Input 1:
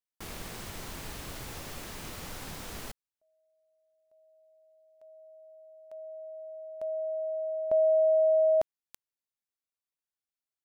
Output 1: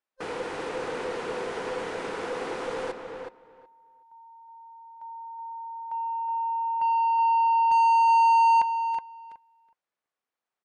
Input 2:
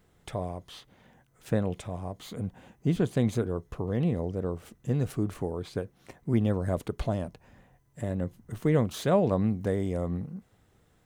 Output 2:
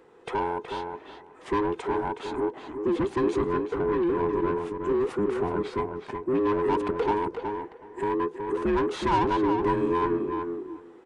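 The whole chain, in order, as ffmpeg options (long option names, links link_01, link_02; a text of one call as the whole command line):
ffmpeg -i in.wav -filter_complex "[0:a]afftfilt=real='real(if(between(b,1,1008),(2*floor((b-1)/24)+1)*24-b,b),0)':imag='imag(if(between(b,1,1008),(2*floor((b-1)/24)+1)*24-b,b),0)*if(between(b,1,1008),-1,1)':win_size=2048:overlap=0.75,asplit=2[link_01][link_02];[link_02]adynamicsmooth=sensitivity=3.5:basefreq=2700,volume=-1dB[link_03];[link_01][link_03]amix=inputs=2:normalize=0,asoftclip=type=tanh:threshold=-9.5dB,asplit=2[link_04][link_05];[link_05]highpass=frequency=720:poles=1,volume=22dB,asoftclip=type=tanh:threshold=-10.5dB[link_06];[link_04][link_06]amix=inputs=2:normalize=0,lowpass=frequency=1600:poles=1,volume=-6dB,asplit=2[link_07][link_08];[link_08]adelay=371,lowpass=frequency=2700:poles=1,volume=-5.5dB,asplit=2[link_09][link_10];[link_10]adelay=371,lowpass=frequency=2700:poles=1,volume=0.15,asplit=2[link_11][link_12];[link_12]adelay=371,lowpass=frequency=2700:poles=1,volume=0.15[link_13];[link_09][link_11][link_13]amix=inputs=3:normalize=0[link_14];[link_07][link_14]amix=inputs=2:normalize=0,aresample=22050,aresample=44100,volume=-6.5dB" out.wav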